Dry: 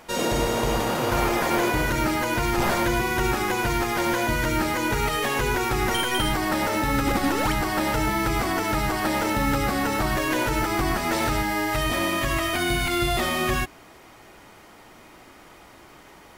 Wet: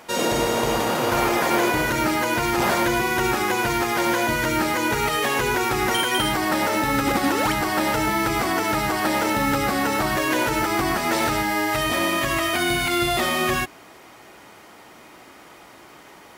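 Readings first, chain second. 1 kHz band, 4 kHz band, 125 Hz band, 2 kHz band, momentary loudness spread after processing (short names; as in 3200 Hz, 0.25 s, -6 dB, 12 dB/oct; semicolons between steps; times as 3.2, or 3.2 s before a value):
+3.0 dB, +3.0 dB, -2.0 dB, +3.0 dB, 2 LU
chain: HPF 170 Hz 6 dB/oct; gain +3 dB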